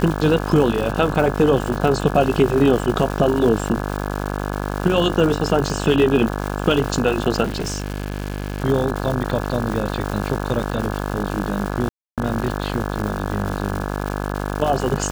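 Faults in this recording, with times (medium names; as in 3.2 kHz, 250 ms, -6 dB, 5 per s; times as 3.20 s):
buzz 50 Hz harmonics 34 -25 dBFS
crackle 360 per s -25 dBFS
7.44–8.62 s: clipped -20 dBFS
11.89–12.18 s: dropout 287 ms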